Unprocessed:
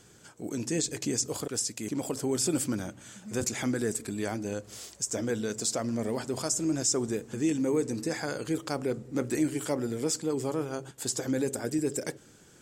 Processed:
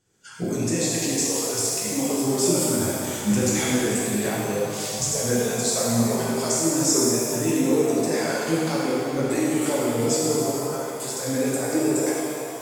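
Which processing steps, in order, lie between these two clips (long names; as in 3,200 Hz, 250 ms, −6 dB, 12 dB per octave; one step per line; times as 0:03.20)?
camcorder AGC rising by 25 dB per second
noise reduction from a noise print of the clip's start 19 dB
0:10.35–0:11.21: output level in coarse steps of 18 dB
flanger 1.6 Hz, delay 0.1 ms, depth 8.9 ms, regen +44%
reverb with rising layers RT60 2.3 s, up +7 semitones, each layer −8 dB, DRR −6 dB
level +5 dB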